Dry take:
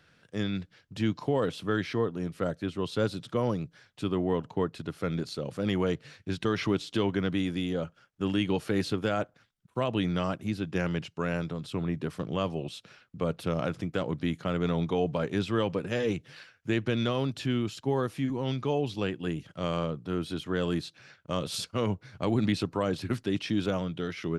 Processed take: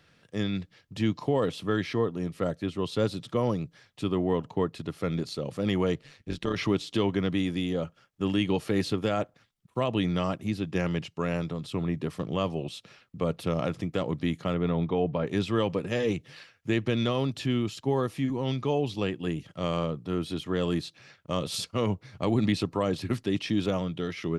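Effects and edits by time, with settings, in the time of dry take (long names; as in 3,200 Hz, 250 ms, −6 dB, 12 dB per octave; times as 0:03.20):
0:06.01–0:06.56: amplitude modulation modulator 140 Hz, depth 55%
0:14.54–0:15.27: high-frequency loss of the air 250 metres
whole clip: notch filter 1,500 Hz, Q 7.8; level +1.5 dB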